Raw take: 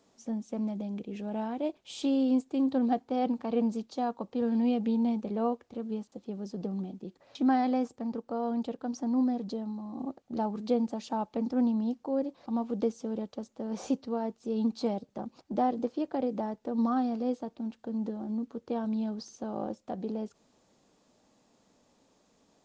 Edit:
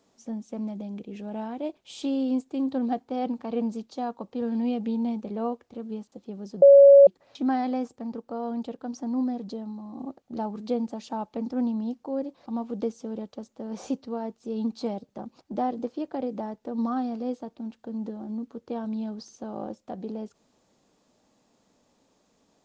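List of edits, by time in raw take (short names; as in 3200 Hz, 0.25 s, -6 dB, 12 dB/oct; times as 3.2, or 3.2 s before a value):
6.62–7.07 bleep 559 Hz -8.5 dBFS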